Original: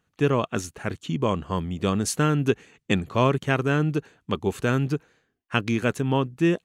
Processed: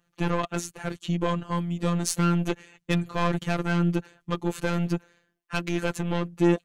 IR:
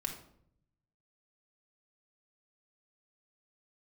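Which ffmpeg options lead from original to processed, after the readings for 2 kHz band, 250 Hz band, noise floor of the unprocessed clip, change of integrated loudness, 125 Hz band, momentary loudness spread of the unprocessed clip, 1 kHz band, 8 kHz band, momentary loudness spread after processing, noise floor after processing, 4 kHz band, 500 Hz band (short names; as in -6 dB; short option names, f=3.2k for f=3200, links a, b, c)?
-3.5 dB, -1.0 dB, -76 dBFS, -2.5 dB, -2.0 dB, 8 LU, -2.5 dB, -0.5 dB, 8 LU, -75 dBFS, -2.5 dB, -4.5 dB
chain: -af "aeval=exprs='(tanh(8.91*val(0)+0.2)-tanh(0.2))/8.91':c=same,afftfilt=real='hypot(re,im)*cos(PI*b)':imag='0':win_size=1024:overlap=0.75,volume=4.5dB"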